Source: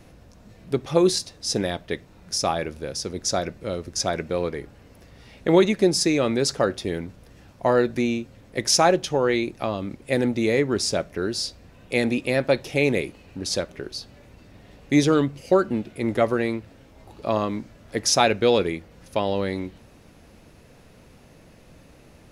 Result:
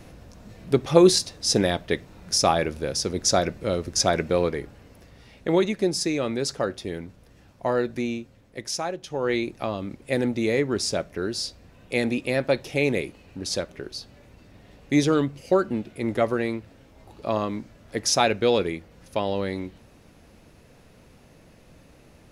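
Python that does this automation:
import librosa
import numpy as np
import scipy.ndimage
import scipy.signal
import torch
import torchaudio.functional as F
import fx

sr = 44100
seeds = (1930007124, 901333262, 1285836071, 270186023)

y = fx.gain(x, sr, db=fx.line((4.33, 3.5), (5.59, -4.5), (8.15, -4.5), (8.96, -13.0), (9.32, -2.0)))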